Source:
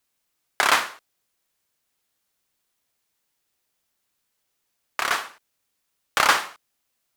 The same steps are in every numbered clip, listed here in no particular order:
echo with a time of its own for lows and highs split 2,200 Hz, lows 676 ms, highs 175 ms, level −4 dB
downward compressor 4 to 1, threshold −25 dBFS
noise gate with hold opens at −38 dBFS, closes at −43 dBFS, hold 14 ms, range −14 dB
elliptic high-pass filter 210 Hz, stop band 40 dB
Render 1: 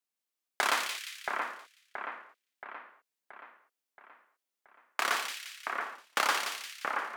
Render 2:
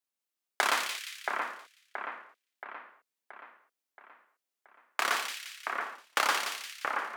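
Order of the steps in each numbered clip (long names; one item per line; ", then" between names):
downward compressor, then elliptic high-pass filter, then noise gate with hold, then echo with a time of its own for lows and highs
elliptic high-pass filter, then noise gate with hold, then downward compressor, then echo with a time of its own for lows and highs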